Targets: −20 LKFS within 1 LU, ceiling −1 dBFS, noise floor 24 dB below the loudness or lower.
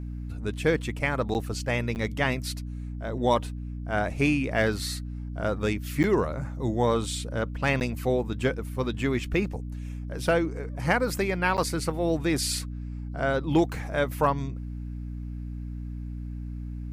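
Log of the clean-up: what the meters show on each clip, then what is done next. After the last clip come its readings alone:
number of dropouts 5; longest dropout 9.3 ms; mains hum 60 Hz; hum harmonics up to 300 Hz; level of the hum −32 dBFS; integrated loudness −28.5 LKFS; sample peak −10.5 dBFS; target loudness −20.0 LKFS
→ repair the gap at 0:01.34/0:01.95/0:06.03/0:07.80/0:11.57, 9.3 ms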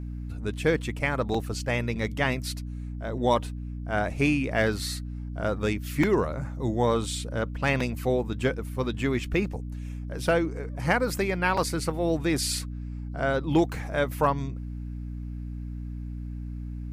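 number of dropouts 0; mains hum 60 Hz; hum harmonics up to 300 Hz; level of the hum −32 dBFS
→ mains-hum notches 60/120/180/240/300 Hz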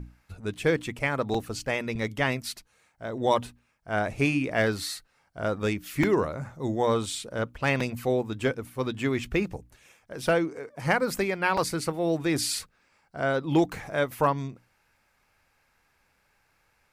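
mains hum none found; integrated loudness −28.0 LKFS; sample peak −10.5 dBFS; target loudness −20.0 LKFS
→ level +8 dB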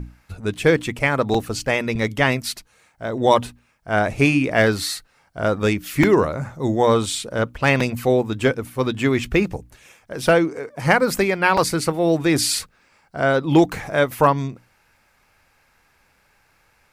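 integrated loudness −20.0 LKFS; sample peak −2.5 dBFS; background noise floor −61 dBFS

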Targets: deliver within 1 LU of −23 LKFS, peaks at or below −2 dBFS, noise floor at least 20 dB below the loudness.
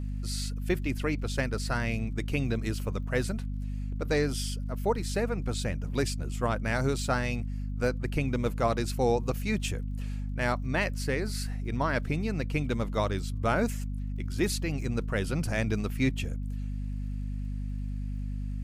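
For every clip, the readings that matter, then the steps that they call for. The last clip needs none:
crackle rate 43 per second; mains hum 50 Hz; hum harmonics up to 250 Hz; level of the hum −31 dBFS; integrated loudness −31.0 LKFS; sample peak −14.0 dBFS; target loudness −23.0 LKFS
→ click removal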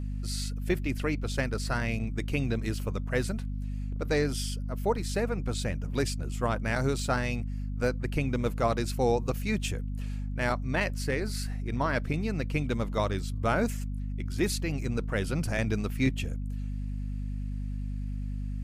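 crackle rate 0.21 per second; mains hum 50 Hz; hum harmonics up to 250 Hz; level of the hum −31 dBFS
→ hum removal 50 Hz, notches 5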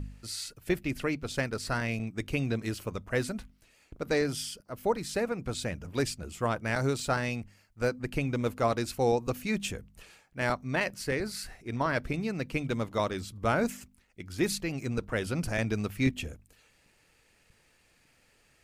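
mains hum none found; integrated loudness −32.0 LKFS; sample peak −13.5 dBFS; target loudness −23.0 LKFS
→ level +9 dB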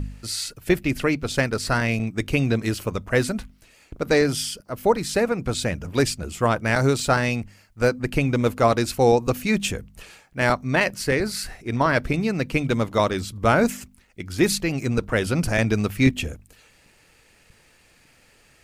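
integrated loudness −23.0 LKFS; sample peak −4.5 dBFS; background noise floor −57 dBFS

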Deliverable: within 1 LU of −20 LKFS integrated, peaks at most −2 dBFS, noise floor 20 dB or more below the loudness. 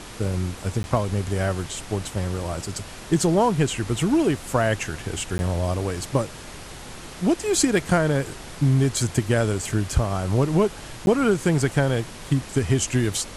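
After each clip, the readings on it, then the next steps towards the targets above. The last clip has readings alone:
number of dropouts 3; longest dropout 11 ms; background noise floor −39 dBFS; target noise floor −44 dBFS; integrated loudness −23.5 LKFS; sample peak −6.5 dBFS; target loudness −20.0 LKFS
→ repair the gap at 0:00.83/0:05.38/0:11.06, 11 ms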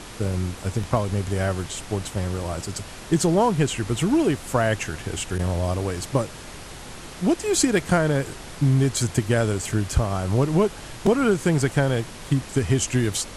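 number of dropouts 0; background noise floor −39 dBFS; target noise floor −44 dBFS
→ noise reduction from a noise print 6 dB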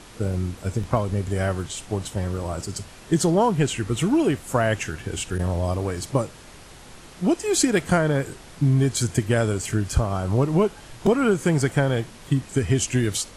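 background noise floor −45 dBFS; integrated loudness −23.5 LKFS; sample peak −6.5 dBFS; target loudness −20.0 LKFS
→ level +3.5 dB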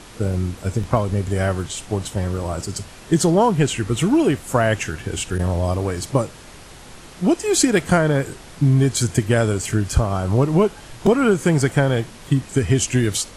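integrated loudness −20.0 LKFS; sample peak −3.0 dBFS; background noise floor −41 dBFS

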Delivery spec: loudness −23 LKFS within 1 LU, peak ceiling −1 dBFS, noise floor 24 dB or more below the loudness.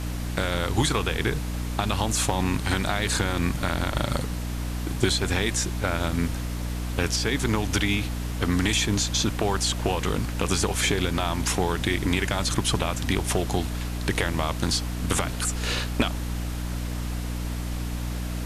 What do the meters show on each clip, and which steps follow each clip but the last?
mains hum 60 Hz; hum harmonics up to 300 Hz; level of the hum −28 dBFS; background noise floor −30 dBFS; target noise floor −50 dBFS; integrated loudness −26.0 LKFS; sample peak −7.0 dBFS; target loudness −23.0 LKFS
→ hum removal 60 Hz, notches 5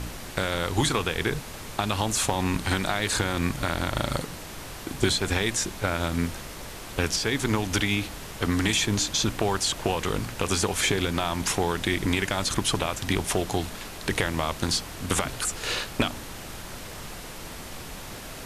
mains hum none found; background noise floor −39 dBFS; target noise floor −51 dBFS
→ noise reduction from a noise print 12 dB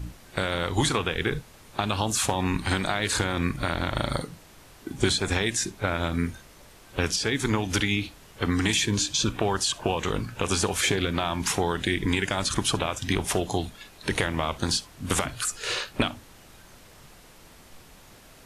background noise floor −51 dBFS; integrated loudness −26.5 LKFS; sample peak −8.5 dBFS; target loudness −23.0 LKFS
→ level +3.5 dB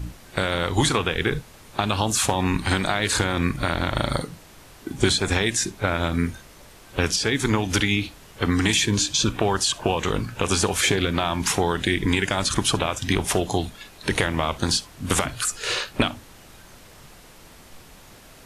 integrated loudness −23.0 LKFS; sample peak −5.0 dBFS; background noise floor −48 dBFS

